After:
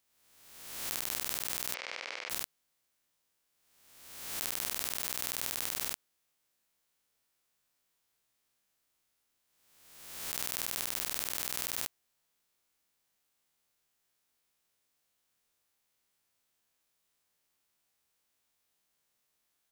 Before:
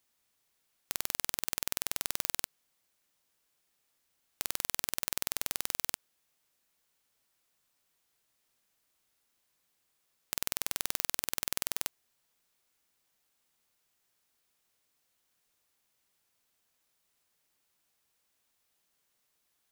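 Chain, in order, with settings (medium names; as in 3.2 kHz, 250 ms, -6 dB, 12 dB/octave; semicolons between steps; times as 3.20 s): reverse spectral sustain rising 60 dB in 1.20 s; 1.74–2.30 s: cabinet simulation 470–4700 Hz, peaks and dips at 520 Hz +8 dB, 2.2 kHz +8 dB, 3.7 kHz -4 dB; trim -5 dB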